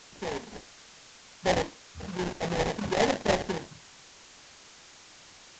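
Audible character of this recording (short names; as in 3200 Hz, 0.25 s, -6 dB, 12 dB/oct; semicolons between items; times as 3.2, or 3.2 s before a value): aliases and images of a low sample rate 1300 Hz, jitter 20%; chopped level 6.4 Hz, depth 65%, duty 90%; a quantiser's noise floor 8-bit, dither triangular; A-law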